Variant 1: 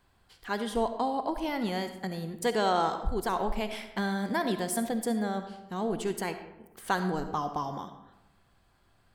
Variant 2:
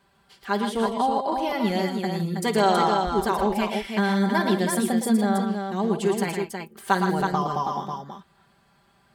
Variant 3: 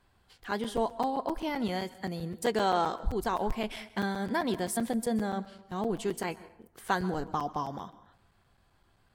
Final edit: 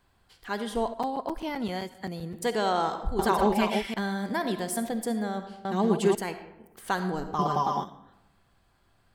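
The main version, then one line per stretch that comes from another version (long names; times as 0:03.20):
1
0:00.94–0:02.34: punch in from 3
0:03.19–0:03.94: punch in from 2
0:05.65–0:06.15: punch in from 2
0:07.39–0:07.84: punch in from 2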